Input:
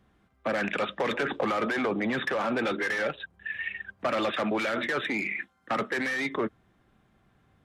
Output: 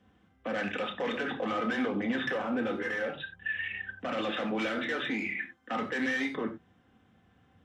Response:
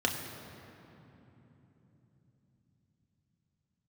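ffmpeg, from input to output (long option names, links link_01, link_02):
-filter_complex "[0:a]alimiter=level_in=2dB:limit=-24dB:level=0:latency=1:release=43,volume=-2dB,asettb=1/sr,asplit=3[link_01][link_02][link_03];[link_01]atrim=end=2.374[link_04];[link_02]atrim=start=2.37:end=3.18,asetpts=PTS-STARTPTS,afade=type=in:duration=0.004:curve=qsin,afade=type=out:start_time=0.806:duration=0.004:curve=qsin,equalizer=frequency=4700:width_type=o:width=2.1:gain=-8[link_05];[link_03]atrim=start=3.176[link_06];[link_04][link_05]acrossfade=duration=0.004:curve1=hsin:curve2=qsin[link_07];[link_07][link_06]acrossfade=duration=0.004:curve1=qsin:curve2=hsin[link_08];[1:a]atrim=start_sample=2205,afade=type=out:start_time=0.15:duration=0.01,atrim=end_sample=7056[link_09];[link_08][link_09]afir=irnorm=-1:irlink=0,volume=-7.5dB"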